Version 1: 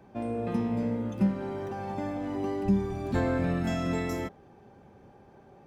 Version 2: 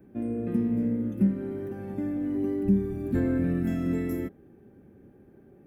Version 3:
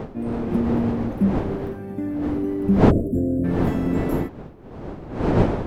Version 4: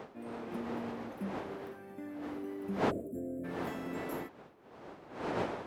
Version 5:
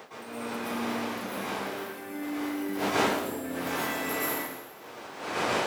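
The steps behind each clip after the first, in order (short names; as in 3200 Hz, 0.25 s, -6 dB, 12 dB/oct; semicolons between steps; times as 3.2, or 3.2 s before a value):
EQ curve 150 Hz 0 dB, 310 Hz +6 dB, 910 Hz -16 dB, 1700 Hz -4 dB, 4600 Hz -16 dB, 6800 Hz -12 dB, 12000 Hz +5 dB
wind noise 400 Hz -28 dBFS; spectral gain 2.91–3.44, 690–7100 Hz -29 dB; gain +3.5 dB
HPF 980 Hz 6 dB/oct; gain -6.5 dB
tilt +3.5 dB/oct; plate-style reverb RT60 1.1 s, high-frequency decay 0.95×, pre-delay 0.1 s, DRR -8.5 dB; gain +1.5 dB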